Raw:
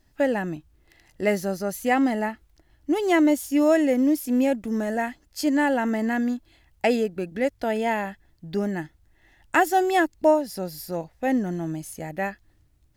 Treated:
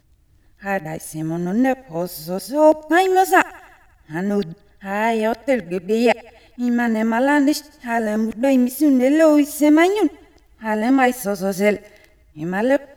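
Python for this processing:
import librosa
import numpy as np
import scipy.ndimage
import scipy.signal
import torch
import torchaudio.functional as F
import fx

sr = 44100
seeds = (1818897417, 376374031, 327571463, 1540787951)

y = np.flip(x).copy()
y = fx.echo_thinned(y, sr, ms=88, feedback_pct=61, hz=320.0, wet_db=-23.5)
y = F.gain(torch.from_numpy(y), 5.5).numpy()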